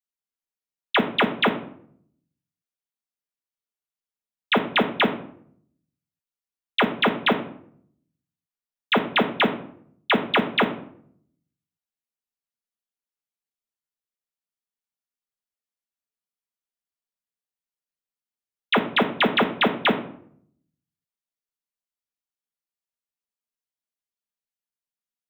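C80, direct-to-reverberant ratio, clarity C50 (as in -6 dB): 15.0 dB, 3.0 dB, 11.0 dB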